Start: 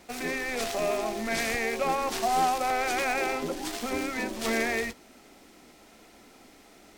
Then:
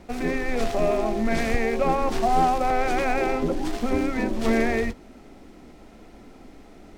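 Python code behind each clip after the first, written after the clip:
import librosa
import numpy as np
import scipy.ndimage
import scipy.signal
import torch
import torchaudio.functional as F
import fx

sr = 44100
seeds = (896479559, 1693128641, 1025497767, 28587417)

y = fx.tilt_eq(x, sr, slope=-3.0)
y = F.gain(torch.from_numpy(y), 3.0).numpy()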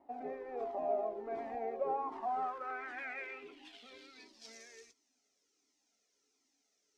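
y = fx.small_body(x, sr, hz=(280.0, 420.0), ring_ms=55, db=13)
y = fx.filter_sweep_bandpass(y, sr, from_hz=760.0, to_hz=6100.0, start_s=1.87, end_s=4.62, q=3.6)
y = fx.comb_cascade(y, sr, direction='falling', hz=1.4)
y = F.gain(torch.from_numpy(y), -4.5).numpy()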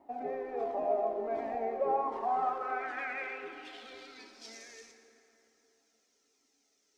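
y = fx.rev_plate(x, sr, seeds[0], rt60_s=3.4, hf_ratio=0.55, predelay_ms=0, drr_db=6.0)
y = F.gain(torch.from_numpy(y), 4.0).numpy()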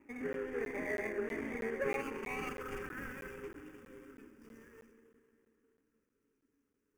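y = scipy.signal.medfilt(x, 41)
y = fx.fixed_phaser(y, sr, hz=1700.0, stages=4)
y = fx.buffer_crackle(y, sr, first_s=0.33, period_s=0.32, block=512, kind='zero')
y = F.gain(torch.from_numpy(y), 6.0).numpy()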